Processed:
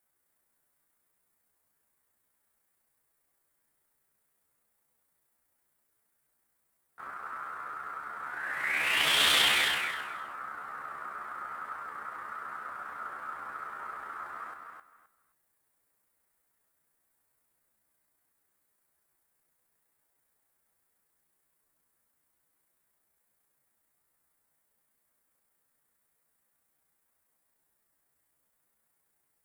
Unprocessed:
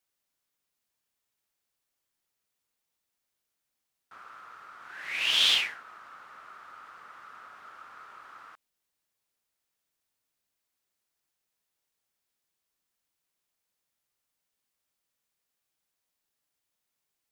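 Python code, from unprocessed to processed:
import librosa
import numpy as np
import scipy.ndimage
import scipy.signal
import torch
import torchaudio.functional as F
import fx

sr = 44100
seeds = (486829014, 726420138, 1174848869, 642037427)

y = fx.band_shelf(x, sr, hz=4100.0, db=-11.0, octaves=1.7)
y = fx.stretch_grains(y, sr, factor=1.7, grain_ms=67.0)
y = fx.echo_feedback(y, sr, ms=261, feedback_pct=20, wet_db=-5)
y = y * librosa.db_to_amplitude(8.5)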